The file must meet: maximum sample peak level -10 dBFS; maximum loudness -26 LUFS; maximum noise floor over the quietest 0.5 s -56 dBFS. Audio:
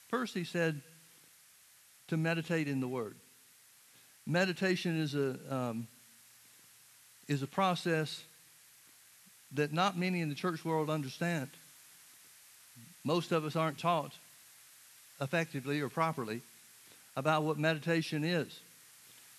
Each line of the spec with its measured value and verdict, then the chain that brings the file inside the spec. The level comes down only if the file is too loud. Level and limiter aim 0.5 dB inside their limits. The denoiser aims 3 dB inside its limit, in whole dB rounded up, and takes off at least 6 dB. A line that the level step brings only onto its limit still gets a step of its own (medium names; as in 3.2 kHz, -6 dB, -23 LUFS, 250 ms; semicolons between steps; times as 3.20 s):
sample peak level -15.5 dBFS: pass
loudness -34.5 LUFS: pass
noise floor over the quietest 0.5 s -62 dBFS: pass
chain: none needed